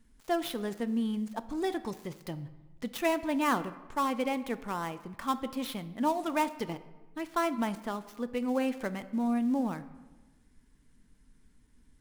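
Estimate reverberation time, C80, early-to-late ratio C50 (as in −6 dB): 1.2 s, 16.5 dB, 15.0 dB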